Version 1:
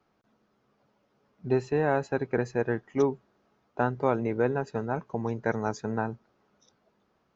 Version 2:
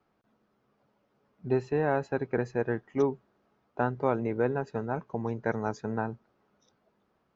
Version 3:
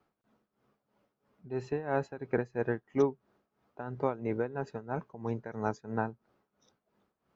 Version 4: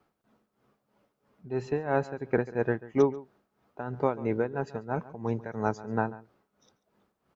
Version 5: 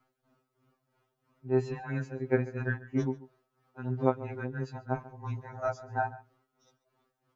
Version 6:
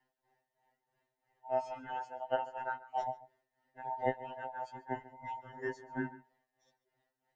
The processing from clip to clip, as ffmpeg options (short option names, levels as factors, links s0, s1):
-af "lowpass=f=3900:p=1,volume=0.841"
-af "tremolo=f=3:d=0.82"
-filter_complex "[0:a]asplit=2[s0][s1];[s1]adelay=139.9,volume=0.126,highshelf=f=4000:g=-3.15[s2];[s0][s2]amix=inputs=2:normalize=0,volume=1.58"
-af "afftfilt=real='re*2.45*eq(mod(b,6),0)':imag='im*2.45*eq(mod(b,6),0)':win_size=2048:overlap=0.75"
-af "afftfilt=real='real(if(between(b,1,1008),(2*floor((b-1)/48)+1)*48-b,b),0)':imag='imag(if(between(b,1,1008),(2*floor((b-1)/48)+1)*48-b,b),0)*if(between(b,1,1008),-1,1)':win_size=2048:overlap=0.75,volume=0.473"